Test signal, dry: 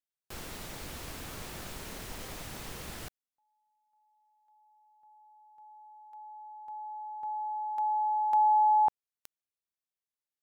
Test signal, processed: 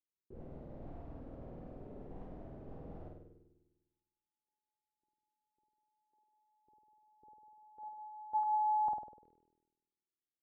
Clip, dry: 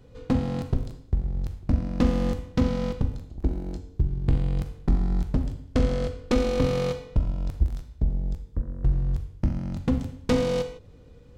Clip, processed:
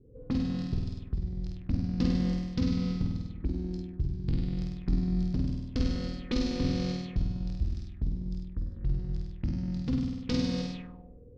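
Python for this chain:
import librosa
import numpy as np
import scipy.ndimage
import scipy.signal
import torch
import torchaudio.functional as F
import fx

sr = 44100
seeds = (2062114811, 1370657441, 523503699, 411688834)

y = fx.curve_eq(x, sr, hz=(300.0, 640.0, 2700.0), db=(0, -10, -3))
y = fx.room_flutter(y, sr, wall_m=8.5, rt60_s=1.2)
y = fx.envelope_lowpass(y, sr, base_hz=370.0, top_hz=5000.0, q=3.5, full_db=-23.0, direction='up')
y = y * 10.0 ** (-7.5 / 20.0)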